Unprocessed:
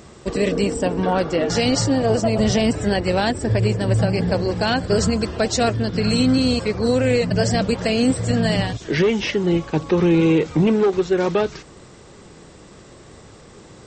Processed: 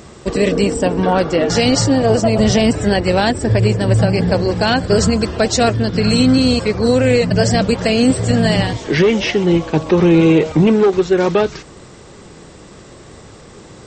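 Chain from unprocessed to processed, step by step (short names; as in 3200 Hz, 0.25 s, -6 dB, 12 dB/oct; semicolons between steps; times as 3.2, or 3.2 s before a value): 7.96–10.52 frequency-shifting echo 0.13 s, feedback 57%, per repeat +150 Hz, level -18.5 dB; gain +5 dB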